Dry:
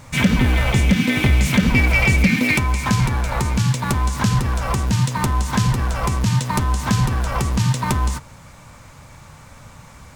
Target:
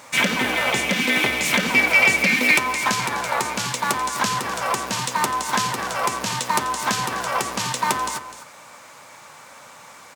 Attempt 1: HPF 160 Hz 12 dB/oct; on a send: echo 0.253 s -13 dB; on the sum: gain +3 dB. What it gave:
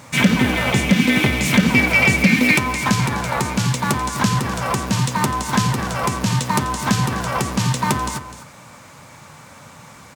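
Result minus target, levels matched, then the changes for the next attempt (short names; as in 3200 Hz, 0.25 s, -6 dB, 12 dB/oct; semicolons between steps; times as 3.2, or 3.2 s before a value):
125 Hz band +13.0 dB
change: HPF 440 Hz 12 dB/oct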